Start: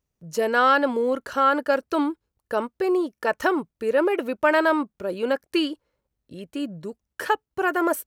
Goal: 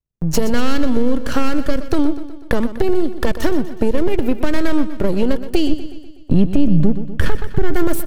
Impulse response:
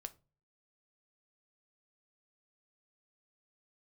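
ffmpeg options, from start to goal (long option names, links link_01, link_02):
-filter_complex "[0:a]aeval=exprs='if(lt(val(0),0),0.251*val(0),val(0))':channel_layout=same,acrossover=split=330|3000[link_01][link_02][link_03];[link_02]acompressor=threshold=-39dB:ratio=2.5[link_04];[link_01][link_04][link_03]amix=inputs=3:normalize=0,lowshelf=frequency=320:gain=11.5,acompressor=threshold=-39dB:ratio=3,asettb=1/sr,asplit=3[link_05][link_06][link_07];[link_05]atrim=end=5.694[link_08];[link_06]atrim=start=5.69:end=7.74,asetpts=PTS-STARTPTS,afade=type=in:duration=0.004:curve=qsin,afade=type=out:start_time=2.046:duration=0.004:curve=qsin,bass=frequency=250:gain=10,treble=frequency=4000:gain=-7[link_09];[link_07]atrim=start=7.736[link_10];[link_08][link_09]acrossfade=duration=0.004:curve1=hsin:curve2=qsin[link_11];[link_11][link_10]acrossfade=duration=0.004:curve1=qsin:curve2=hsin,agate=range=-33dB:threshold=-55dB:ratio=16:detection=peak,aecho=1:1:123|246|369|492|615|738:0.224|0.123|0.0677|0.0372|0.0205|0.0113,alimiter=level_in=24.5dB:limit=-1dB:release=50:level=0:latency=1,volume=-2dB"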